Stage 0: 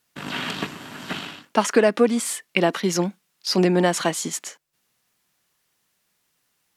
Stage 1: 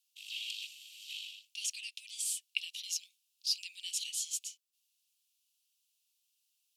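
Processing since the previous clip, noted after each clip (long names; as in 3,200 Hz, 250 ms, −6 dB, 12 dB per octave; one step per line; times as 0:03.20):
Butterworth high-pass 2,600 Hz 72 dB per octave
level −7 dB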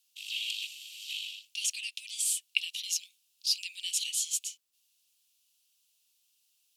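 dynamic equaliser 5,200 Hz, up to −3 dB, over −49 dBFS, Q 2
level +6.5 dB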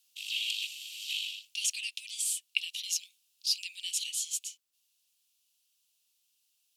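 speech leveller within 3 dB 0.5 s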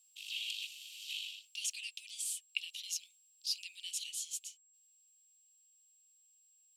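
steady tone 7,600 Hz −59 dBFS
level −7 dB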